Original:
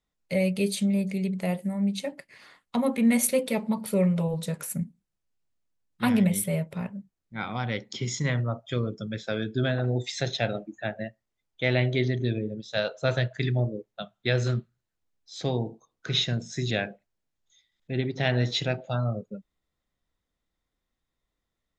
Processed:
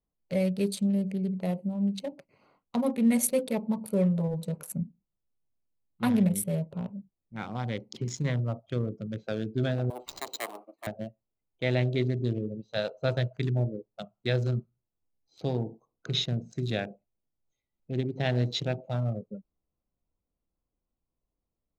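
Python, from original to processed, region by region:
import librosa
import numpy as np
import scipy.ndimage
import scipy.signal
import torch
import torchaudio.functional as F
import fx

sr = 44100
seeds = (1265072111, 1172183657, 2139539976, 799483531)

y = fx.chain(x, sr, fx.lower_of_two(delay_ms=1.0),
    fx.highpass(hz=370.0, slope=24),
    fx.resample_bad(factor=4, down='none', up='hold'), at=(9.9, 10.87))
y = fx.wiener(y, sr, points=25)
y = fx.dynamic_eq(y, sr, hz=2000.0, q=0.79, threshold_db=-45.0, ratio=4.0, max_db=-4)
y = F.gain(torch.from_numpy(y), -1.5).numpy()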